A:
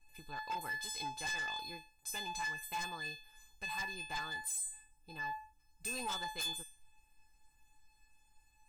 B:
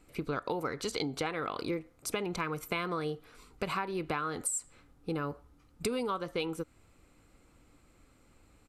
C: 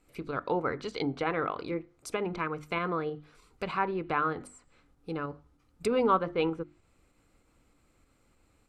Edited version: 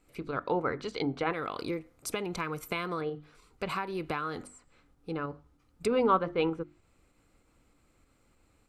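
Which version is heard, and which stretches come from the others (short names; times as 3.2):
C
1.33–3.01 from B
3.69–4.43 from B
not used: A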